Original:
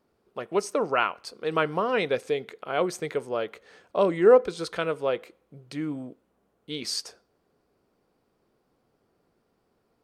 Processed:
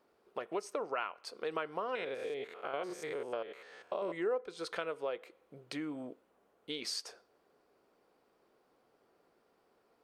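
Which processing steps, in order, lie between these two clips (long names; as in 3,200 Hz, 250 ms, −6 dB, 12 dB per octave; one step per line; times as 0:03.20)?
0:01.95–0:04.13: spectrum averaged block by block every 100 ms
bass and treble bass −14 dB, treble −4 dB
downward compressor 3 to 1, threshold −40 dBFS, peak gain reduction 19.5 dB
level +2 dB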